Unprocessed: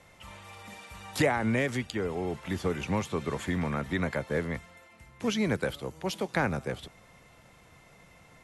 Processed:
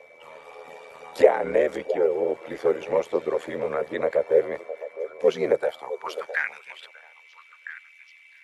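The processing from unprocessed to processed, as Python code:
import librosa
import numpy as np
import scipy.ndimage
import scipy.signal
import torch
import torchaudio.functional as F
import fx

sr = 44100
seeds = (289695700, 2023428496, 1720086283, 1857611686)

p1 = fx.spec_quant(x, sr, step_db=15)
p2 = fx.peak_eq(p1, sr, hz=110.0, db=6.0, octaves=1.9)
p3 = fx.filter_sweep_highpass(p2, sr, from_hz=490.0, to_hz=2500.0, start_s=5.5, end_s=6.61, q=5.3)
p4 = fx.high_shelf(p3, sr, hz=3300.0, db=-8.5)
p5 = p4 + fx.echo_stepped(p4, sr, ms=659, hz=620.0, octaves=1.4, feedback_pct=70, wet_db=-11, dry=0)
p6 = p5 * np.sin(2.0 * np.pi * 40.0 * np.arange(len(p5)) / sr)
p7 = p6 + 10.0 ** (-56.0 / 20.0) * np.sin(2.0 * np.pi * 2300.0 * np.arange(len(p6)) / sr)
y = F.gain(torch.from_numpy(p7), 3.5).numpy()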